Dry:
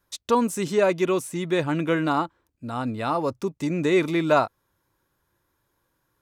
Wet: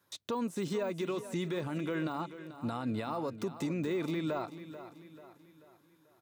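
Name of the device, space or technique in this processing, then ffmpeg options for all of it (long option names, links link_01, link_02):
broadcast voice chain: -af "highpass=frequency=100:width=0.5412,highpass=frequency=100:width=1.3066,deesser=1,acompressor=threshold=-23dB:ratio=6,equalizer=frequency=3800:width_type=o:width=0.34:gain=3.5,alimiter=level_in=2dB:limit=-24dB:level=0:latency=1:release=170,volume=-2dB,aecho=1:1:438|876|1314|1752|2190:0.224|0.103|0.0474|0.0218|0.01"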